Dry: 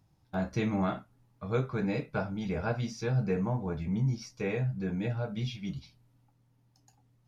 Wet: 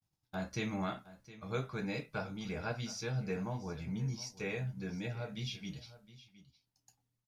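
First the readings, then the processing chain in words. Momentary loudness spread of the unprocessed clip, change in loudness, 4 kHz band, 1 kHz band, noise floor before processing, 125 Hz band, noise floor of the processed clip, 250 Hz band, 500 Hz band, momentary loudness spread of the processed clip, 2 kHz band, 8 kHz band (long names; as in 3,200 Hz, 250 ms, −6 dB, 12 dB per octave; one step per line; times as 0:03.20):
7 LU, −7.0 dB, +1.0 dB, −5.5 dB, −68 dBFS, −8.0 dB, −85 dBFS, −8.0 dB, −7.0 dB, 13 LU, −2.5 dB, can't be measured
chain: downward expander −59 dBFS
high-shelf EQ 2,100 Hz +12 dB
on a send: single-tap delay 714 ms −17 dB
on the sum: level −8 dB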